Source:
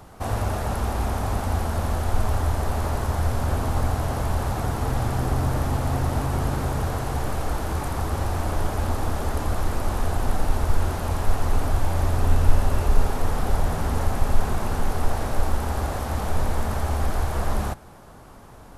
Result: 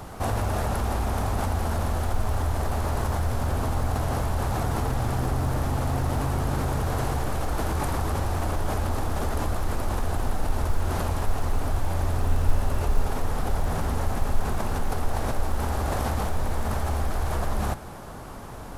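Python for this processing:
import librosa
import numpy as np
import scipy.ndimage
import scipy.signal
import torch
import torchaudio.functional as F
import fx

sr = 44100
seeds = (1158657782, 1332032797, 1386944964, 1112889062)

p1 = fx.over_compress(x, sr, threshold_db=-31.0, ratio=-1.0)
p2 = x + (p1 * 10.0 ** (0.0 / 20.0))
p3 = fx.quant_companded(p2, sr, bits=8)
y = p3 * 10.0 ** (-5.0 / 20.0)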